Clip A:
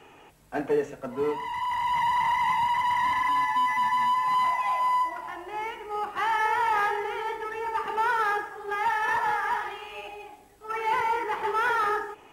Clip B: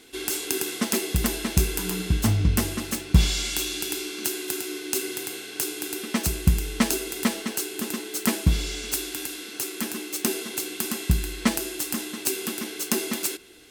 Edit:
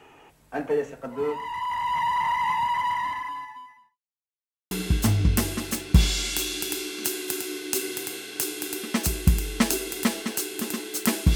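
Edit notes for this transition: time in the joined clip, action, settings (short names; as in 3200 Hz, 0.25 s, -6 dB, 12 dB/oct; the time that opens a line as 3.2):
clip A
2.85–3.99 fade out quadratic
3.99–4.71 mute
4.71 switch to clip B from 1.91 s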